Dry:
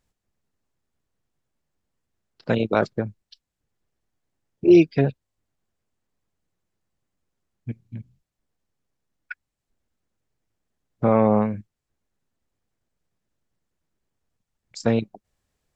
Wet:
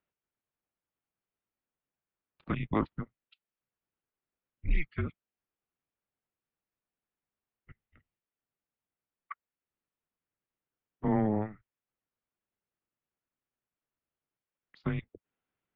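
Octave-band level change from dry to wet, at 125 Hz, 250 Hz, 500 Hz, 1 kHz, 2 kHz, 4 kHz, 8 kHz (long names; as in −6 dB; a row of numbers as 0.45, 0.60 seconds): −9.0 dB, −13.0 dB, −17.5 dB, −11.0 dB, −10.0 dB, below −15 dB, can't be measured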